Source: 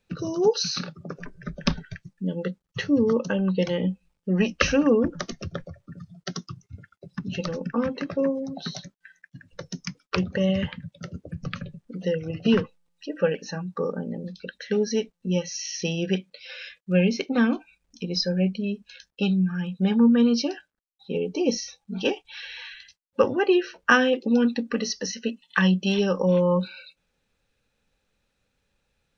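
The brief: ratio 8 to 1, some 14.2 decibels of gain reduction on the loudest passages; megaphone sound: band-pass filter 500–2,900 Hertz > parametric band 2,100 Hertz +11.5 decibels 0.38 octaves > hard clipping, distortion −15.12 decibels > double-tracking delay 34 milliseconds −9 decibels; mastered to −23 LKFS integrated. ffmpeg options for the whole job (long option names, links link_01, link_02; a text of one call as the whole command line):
ffmpeg -i in.wav -filter_complex "[0:a]acompressor=threshold=-29dB:ratio=8,highpass=500,lowpass=2900,equalizer=frequency=2100:width_type=o:width=0.38:gain=11.5,asoftclip=type=hard:threshold=-24dB,asplit=2[link_01][link_02];[link_02]adelay=34,volume=-9dB[link_03];[link_01][link_03]amix=inputs=2:normalize=0,volume=16dB" out.wav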